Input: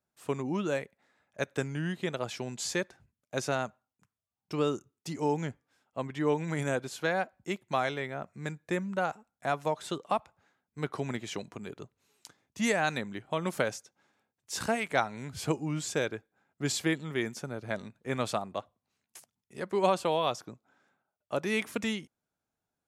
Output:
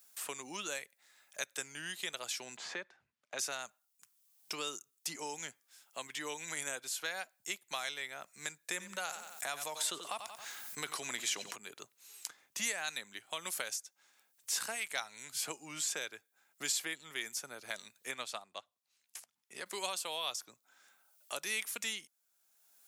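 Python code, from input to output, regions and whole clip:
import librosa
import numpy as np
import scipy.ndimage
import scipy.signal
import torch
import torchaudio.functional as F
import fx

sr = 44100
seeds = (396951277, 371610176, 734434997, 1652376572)

y = fx.chain(x, sr, fx.lowpass(hz=1500.0, slope=12),
    fx.band_squash(depth_pct=40), at=(2.57, 3.39))
y = fx.chain(y, sr, fx.echo_feedback(ms=91, feedback_pct=28, wet_db=-17.0),
    fx.env_flatten(amount_pct=50), at=(8.69, 11.56))
y = fx.chain(y, sr, fx.lowpass(hz=2500.0, slope=6),
    fx.upward_expand(threshold_db=-41.0, expansion=1.5), at=(18.11, 19.66))
y = np.diff(y, prepend=0.0)
y = fx.band_squash(y, sr, depth_pct=70)
y = F.gain(torch.from_numpy(y), 7.0).numpy()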